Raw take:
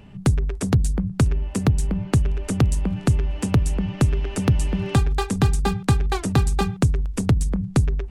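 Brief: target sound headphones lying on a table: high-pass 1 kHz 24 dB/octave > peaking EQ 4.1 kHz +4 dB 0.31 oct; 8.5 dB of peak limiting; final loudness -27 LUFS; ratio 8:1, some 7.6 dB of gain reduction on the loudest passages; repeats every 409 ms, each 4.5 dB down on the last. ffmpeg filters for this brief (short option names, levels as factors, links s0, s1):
-af "acompressor=threshold=0.1:ratio=8,alimiter=limit=0.133:level=0:latency=1,highpass=f=1000:w=0.5412,highpass=f=1000:w=1.3066,equalizer=f=4100:t=o:w=0.31:g=4,aecho=1:1:409|818|1227|1636|2045|2454|2863|3272|3681:0.596|0.357|0.214|0.129|0.0772|0.0463|0.0278|0.0167|0.01,volume=3.55"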